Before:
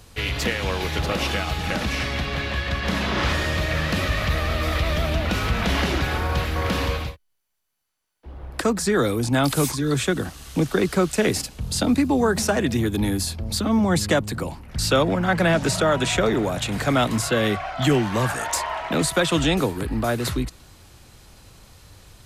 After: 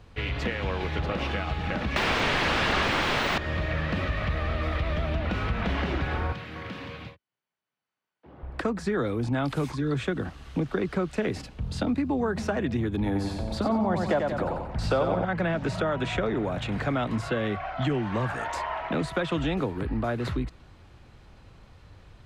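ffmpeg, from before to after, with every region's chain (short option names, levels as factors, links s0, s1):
-filter_complex "[0:a]asettb=1/sr,asplit=3[s0][s1][s2];[s0]atrim=end=1.964[s3];[s1]atrim=start=1.96:end=3.38,asetpts=PTS-STARTPTS,afade=t=in:d=0.004:c=qsin,afade=t=out:st=1.416:d=0.004:c=qsin,equalizer=f=3900:t=o:w=1.7:g=12,aeval=exprs='0.473*sin(PI/2*8.91*val(0)/0.473)':c=same,acrossover=split=5000[s4][s5];[s5]acompressor=threshold=0.0708:ratio=4:attack=1:release=60[s6];[s4][s6]amix=inputs=2:normalize=0[s7];[s2]atrim=start=3.376[s8];[s3][s7]acrossfade=d=0.004:c1=hsin:c2=qsin[s9];[s9][s8]acrossfade=d=0.004:c1=qsin:c2=hsin,asettb=1/sr,asplit=3[s10][s11][s12];[s10]atrim=end=6.324[s13];[s11]atrim=start=6.32:end=8.43,asetpts=PTS-STARTPTS,afade=t=in:d=0.004:c=qsin,afade=t=out:st=2.106:d=0.004:c=qsin,highpass=f=110:w=0.5412,highpass=f=110:w=1.3066,acrossover=split=310|1600[s14][s15][s16];[s14]acompressor=threshold=0.0141:ratio=4[s17];[s15]acompressor=threshold=0.00708:ratio=4[s18];[s16]acompressor=threshold=0.0158:ratio=4[s19];[s17][s18][s19]amix=inputs=3:normalize=0[s20];[s12]atrim=start=8.426[s21];[s13][s20]acrossfade=d=0.004:c1=hsin:c2=qsin[s22];[s22][s21]acrossfade=d=0.004:c1=qsin:c2=hsin,asettb=1/sr,asplit=3[s23][s24][s25];[s23]atrim=end=13.064[s26];[s24]atrim=start=13.06:end=15.25,asetpts=PTS-STARTPTS,afade=t=in:d=0.004:c=qsin,afade=t=out:st=2.186:d=0.004:c=qsin,equalizer=f=730:t=o:w=1.3:g=10.5,aecho=1:1:91|182|273|364|455:0.562|0.242|0.104|0.0447|0.0192,atrim=end_sample=96579[s27];[s25]atrim=start=15.246[s28];[s26][s27]acrossfade=d=0.004:c1=hsin:c2=qsin[s29];[s29][s28]acrossfade=d=0.004:c1=qsin:c2=hsin,bass=f=250:g=1,treble=f=4000:g=-10,acompressor=threshold=0.0891:ratio=3,equalizer=f=14000:t=o:w=1.3:g=-14.5,volume=0.708"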